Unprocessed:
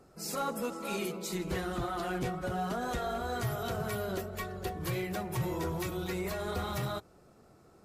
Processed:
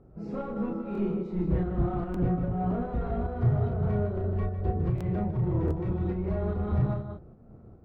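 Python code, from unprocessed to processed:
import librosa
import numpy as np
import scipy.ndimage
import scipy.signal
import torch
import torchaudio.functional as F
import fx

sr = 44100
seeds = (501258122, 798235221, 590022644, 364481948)

p1 = fx.highpass(x, sr, hz=43.0, slope=6)
p2 = fx.spacing_loss(p1, sr, db_at_10k=37)
p3 = p2 + 10.0 ** (-8.0 / 20.0) * np.pad(p2, (int(154 * sr / 1000.0), 0))[:len(p2)]
p4 = 10.0 ** (-31.0 / 20.0) * np.tanh(p3 / 10.0 ** (-31.0 / 20.0))
p5 = fx.tilt_eq(p4, sr, slope=-4.0)
p6 = fx.doubler(p5, sr, ms=34.0, db=-3.0)
p7 = fx.volume_shaper(p6, sr, bpm=147, per_beat=1, depth_db=-10, release_ms=153.0, shape='slow start')
p8 = p6 + F.gain(torch.from_numpy(p7), 2.0).numpy()
p9 = fx.buffer_glitch(p8, sr, at_s=(0.93, 2.12, 4.96, 5.66), block=1024, repeats=1)
y = F.gain(torch.from_numpy(p9), -7.0).numpy()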